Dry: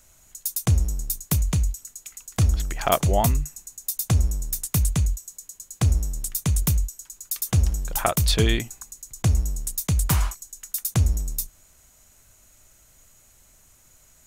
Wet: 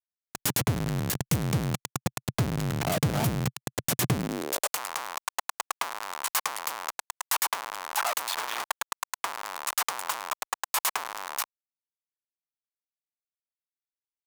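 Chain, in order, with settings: Schmitt trigger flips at -29.5 dBFS; Chebyshev shaper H 3 -14 dB, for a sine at -18 dBFS; high-pass sweep 130 Hz -> 990 Hz, 4.10–4.79 s; trim +1.5 dB

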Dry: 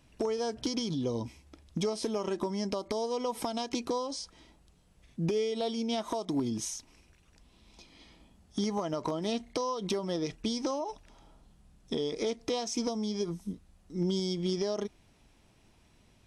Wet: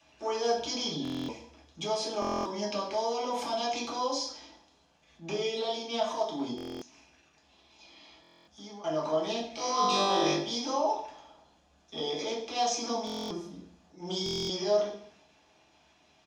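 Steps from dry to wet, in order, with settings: transient shaper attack -11 dB, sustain +2 dB; comb 1.2 ms, depth 32%; gain riding within 3 dB 2 s; three-band isolator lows -21 dB, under 300 Hz, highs -13 dB, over 6.4 kHz; 6.51–8.84 s: compression 8:1, threshold -51 dBFS, peak gain reduction 17.5 dB; 9.50–10.34 s: flutter echo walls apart 3.5 m, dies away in 1.4 s; reverberation RT60 0.60 s, pre-delay 3 ms, DRR -6.5 dB; buffer glitch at 1.03/2.20/6.56/8.22/13.05/14.24 s, samples 1024, times 10; trim -5 dB

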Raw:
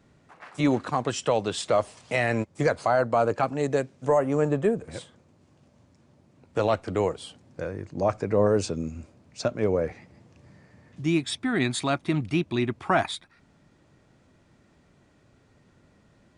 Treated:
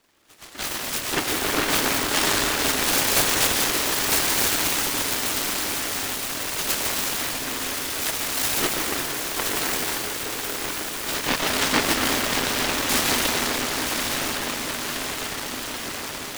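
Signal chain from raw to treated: spectrum inverted on a logarithmic axis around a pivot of 1.5 kHz; tone controls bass -11 dB, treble -10 dB; echo that smears into a reverb 1005 ms, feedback 71%, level -4.5 dB; algorithmic reverb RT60 4.3 s, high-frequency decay 0.7×, pre-delay 65 ms, DRR -3 dB; delay time shaken by noise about 1.2 kHz, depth 0.45 ms; trim +5.5 dB

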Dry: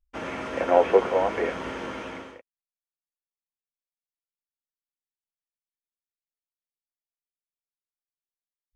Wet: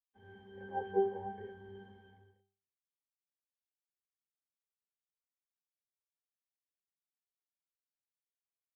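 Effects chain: pitch-class resonator G, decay 0.51 s; three bands expanded up and down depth 40%

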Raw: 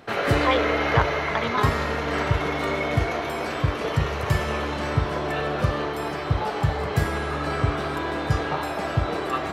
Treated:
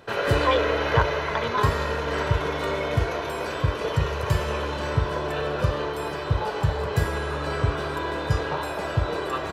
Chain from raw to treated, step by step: band-stop 2.1 kHz, Q 12; comb 2 ms, depth 40%; trim -1.5 dB

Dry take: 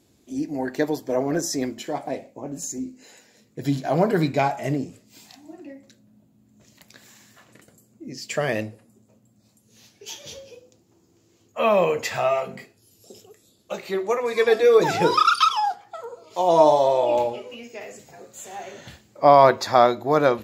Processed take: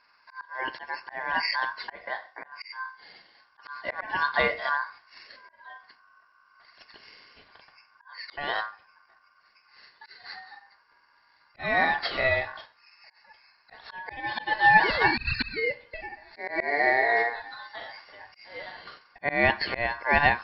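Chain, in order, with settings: knee-point frequency compression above 2.7 kHz 4:1; ring modulator 1.3 kHz; slow attack 271 ms

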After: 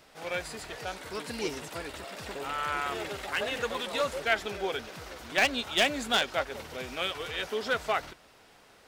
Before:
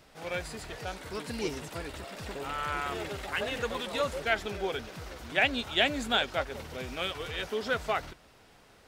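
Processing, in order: one-sided wavefolder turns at -22 dBFS; bass shelf 200 Hz -9 dB; trim +2 dB

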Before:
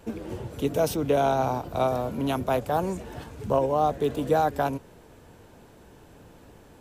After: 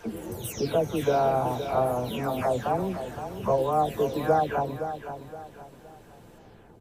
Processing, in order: delay that grows with frequency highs early, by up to 424 ms; feedback delay 517 ms, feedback 35%, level -10 dB

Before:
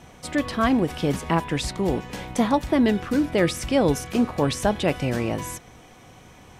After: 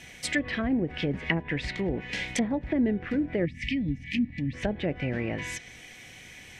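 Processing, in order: low-pass that closes with the level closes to 610 Hz, closed at -18 dBFS; resonant high shelf 1.5 kHz +9 dB, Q 3; time-frequency box 3.45–4.53 s, 320–1700 Hz -25 dB; trim -5 dB

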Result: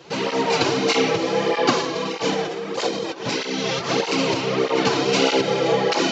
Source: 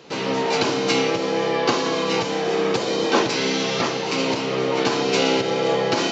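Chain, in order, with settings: 1.81–4.01 s: compressor with a negative ratio -25 dBFS, ratio -0.5; cancelling through-zero flanger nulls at 1.6 Hz, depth 5 ms; trim +4 dB

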